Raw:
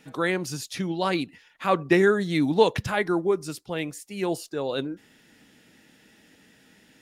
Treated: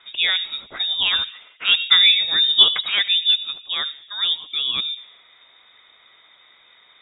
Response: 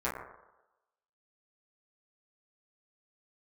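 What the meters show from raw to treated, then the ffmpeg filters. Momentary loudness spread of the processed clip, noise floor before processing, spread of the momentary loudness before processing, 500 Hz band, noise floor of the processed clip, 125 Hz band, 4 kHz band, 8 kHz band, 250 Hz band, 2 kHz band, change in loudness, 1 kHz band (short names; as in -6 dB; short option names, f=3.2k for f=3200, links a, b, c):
13 LU, -59 dBFS, 12 LU, -21.0 dB, -54 dBFS, under -20 dB, +23.0 dB, under -40 dB, under -20 dB, +6.0 dB, +8.5 dB, -6.5 dB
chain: -filter_complex "[0:a]highpass=110,asplit=2[a][b];[1:a]atrim=start_sample=2205,adelay=75[c];[b][c]afir=irnorm=-1:irlink=0,volume=-24dB[d];[a][d]amix=inputs=2:normalize=0,lowpass=f=3.3k:t=q:w=0.5098,lowpass=f=3.3k:t=q:w=0.6013,lowpass=f=3.3k:t=q:w=0.9,lowpass=f=3.3k:t=q:w=2.563,afreqshift=-3900,volume=5dB"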